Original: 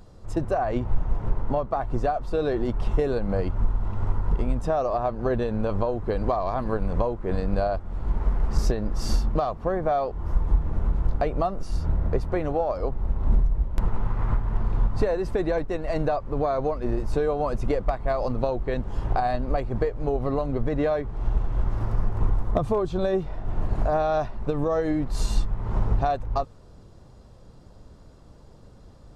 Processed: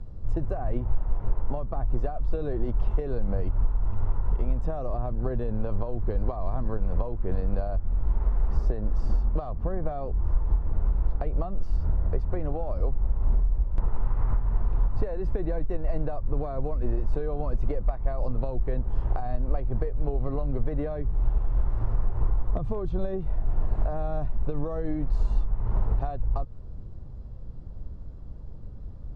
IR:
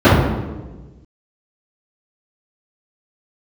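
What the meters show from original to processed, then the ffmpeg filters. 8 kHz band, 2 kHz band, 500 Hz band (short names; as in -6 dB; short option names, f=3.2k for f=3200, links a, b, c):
n/a, -12.0 dB, -8.5 dB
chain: -filter_complex "[0:a]acrossover=split=380|1600[a][b][c];[a]acompressor=threshold=-34dB:ratio=4[d];[b]acompressor=threshold=-31dB:ratio=4[e];[c]acompressor=threshold=-48dB:ratio=4[f];[d][e][f]amix=inputs=3:normalize=0,aemphasis=mode=reproduction:type=riaa,volume=-5.5dB"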